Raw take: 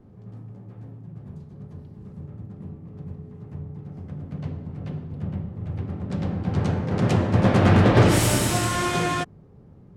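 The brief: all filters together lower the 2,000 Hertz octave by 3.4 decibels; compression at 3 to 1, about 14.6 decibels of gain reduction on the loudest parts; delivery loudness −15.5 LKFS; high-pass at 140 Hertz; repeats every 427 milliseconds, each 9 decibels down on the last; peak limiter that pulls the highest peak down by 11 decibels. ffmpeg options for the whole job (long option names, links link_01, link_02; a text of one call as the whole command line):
ffmpeg -i in.wav -af "highpass=140,equalizer=frequency=2000:width_type=o:gain=-4.5,acompressor=threshold=-35dB:ratio=3,alimiter=level_in=8dB:limit=-24dB:level=0:latency=1,volume=-8dB,aecho=1:1:427|854|1281|1708:0.355|0.124|0.0435|0.0152,volume=25.5dB" out.wav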